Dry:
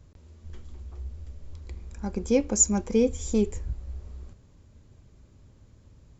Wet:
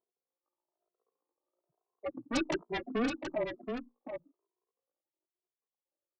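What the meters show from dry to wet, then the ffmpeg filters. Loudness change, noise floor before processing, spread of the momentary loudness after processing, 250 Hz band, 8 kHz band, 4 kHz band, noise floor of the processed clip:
-11.0 dB, -56 dBFS, 12 LU, -9.5 dB, n/a, -0.5 dB, under -85 dBFS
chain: -filter_complex "[0:a]aemphasis=mode=reproduction:type=75kf,afftfilt=real='re*gte(hypot(re,im),0.0251)':imag='im*gte(hypot(re,im),0.0251)':win_size=1024:overlap=0.75,aeval=exprs='0.299*(cos(1*acos(clip(val(0)/0.299,-1,1)))-cos(1*PI/2))+0.119*(cos(2*acos(clip(val(0)/0.299,-1,1)))-cos(2*PI/2))+0.0299*(cos(4*acos(clip(val(0)/0.299,-1,1)))-cos(4*PI/2))':c=same,aphaser=in_gain=1:out_gain=1:delay=1.7:decay=0.57:speed=0.39:type=triangular,asuperpass=centerf=920:order=12:qfactor=1,asplit=2[a][b];[b]aeval=exprs='0.0944*sin(PI/2*7.94*val(0)/0.0944)':c=same,volume=-7dB[c];[a][c]amix=inputs=2:normalize=0,aecho=1:1:726:0.473,afreqshift=-240,asplit=2[d][e];[e]adelay=2.5,afreqshift=1.1[f];[d][f]amix=inputs=2:normalize=1"

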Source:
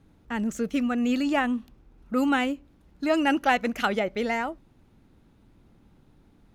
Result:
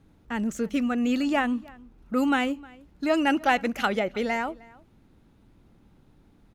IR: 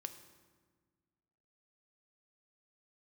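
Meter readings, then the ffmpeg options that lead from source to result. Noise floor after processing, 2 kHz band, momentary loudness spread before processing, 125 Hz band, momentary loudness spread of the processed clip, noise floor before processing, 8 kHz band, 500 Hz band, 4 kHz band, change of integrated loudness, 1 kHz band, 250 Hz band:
-59 dBFS, 0.0 dB, 9 LU, n/a, 10 LU, -60 dBFS, 0.0 dB, 0.0 dB, 0.0 dB, 0.0 dB, 0.0 dB, 0.0 dB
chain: -filter_complex "[0:a]asplit=2[a][b];[b]adelay=309,volume=-23dB,highshelf=f=4k:g=-6.95[c];[a][c]amix=inputs=2:normalize=0"

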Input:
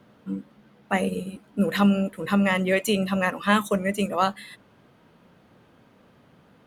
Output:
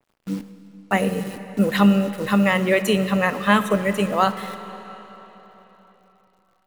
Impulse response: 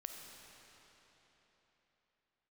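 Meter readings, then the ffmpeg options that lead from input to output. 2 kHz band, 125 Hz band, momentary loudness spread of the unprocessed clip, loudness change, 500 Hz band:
+3.5 dB, +4.0 dB, 14 LU, +3.5 dB, +4.0 dB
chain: -filter_complex "[0:a]agate=range=-16dB:threshold=-43dB:ratio=16:detection=peak,acrusher=bits=8:dc=4:mix=0:aa=0.000001,asplit=2[a][b];[1:a]atrim=start_sample=2205[c];[b][c]afir=irnorm=-1:irlink=0,volume=-0.5dB[d];[a][d]amix=inputs=2:normalize=0,adynamicequalizer=threshold=0.02:dfrequency=3300:dqfactor=0.7:tfrequency=3300:tqfactor=0.7:attack=5:release=100:ratio=0.375:range=2:mode=cutabove:tftype=highshelf"

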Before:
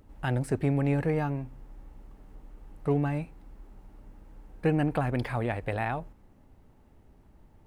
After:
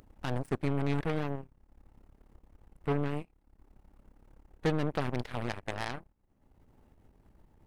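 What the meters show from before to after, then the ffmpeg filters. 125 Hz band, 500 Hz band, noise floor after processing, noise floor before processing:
-6.0 dB, -4.5 dB, -69 dBFS, -58 dBFS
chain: -af "aeval=exprs='0.2*(cos(1*acos(clip(val(0)/0.2,-1,1)))-cos(1*PI/2))+0.00126*(cos(5*acos(clip(val(0)/0.2,-1,1)))-cos(5*PI/2))+0.0141*(cos(6*acos(clip(val(0)/0.2,-1,1)))-cos(6*PI/2))+0.0251*(cos(7*acos(clip(val(0)/0.2,-1,1)))-cos(7*PI/2))+0.0316*(cos(8*acos(clip(val(0)/0.2,-1,1)))-cos(8*PI/2))':c=same,acompressor=mode=upward:threshold=-41dB:ratio=2.5,volume=-4dB"

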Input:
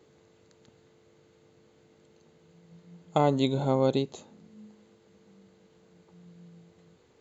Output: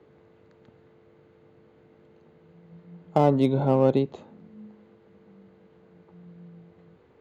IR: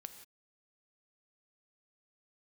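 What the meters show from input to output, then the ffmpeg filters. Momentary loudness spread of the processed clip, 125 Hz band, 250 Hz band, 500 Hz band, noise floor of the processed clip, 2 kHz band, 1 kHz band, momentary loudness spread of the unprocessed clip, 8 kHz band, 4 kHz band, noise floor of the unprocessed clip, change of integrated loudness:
7 LU, +4.5 dB, +4.5 dB, +4.0 dB, -58 dBFS, 0.0 dB, +2.5 dB, 7 LU, n/a, -6.5 dB, -62 dBFS, +4.0 dB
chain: -filter_complex "[0:a]lowpass=2.1k,acrossover=split=120|900[a][b][c];[c]asoftclip=type=hard:threshold=-36dB[d];[a][b][d]amix=inputs=3:normalize=0,volume=4.5dB"

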